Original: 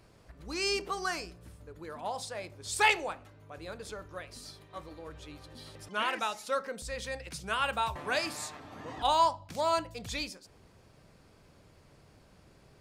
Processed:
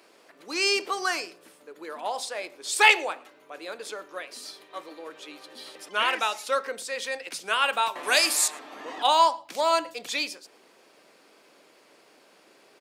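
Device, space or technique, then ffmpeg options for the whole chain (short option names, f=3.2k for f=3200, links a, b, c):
presence and air boost: -filter_complex "[0:a]highpass=f=290:w=0.5412,highpass=f=290:w=1.3066,equalizer=f=2.7k:t=o:w=1.3:g=4,highshelf=f=10k:g=3.5,asettb=1/sr,asplit=3[a][b][c];[a]atrim=end=8.034[d];[b]atrim=start=8.03:end=8.48,asetpts=PTS-STARTPTS,afade=t=in:d=0.004:c=qsin,afade=t=out:st=0.446:d=0.004:c=qsin,equalizer=f=11k:t=o:w=1.9:g=14[e];[c]atrim=start=8.476[f];[d][e]acrossfade=d=0.004:c1=hsin:c2=qsin[g];[g][f]acrossfade=d=0.004:c1=qsin:c2=hsin,asplit=2[h][i];[i]adelay=110.8,volume=-24dB,highshelf=f=4k:g=-2.49[j];[h][j]amix=inputs=2:normalize=0,volume=5dB"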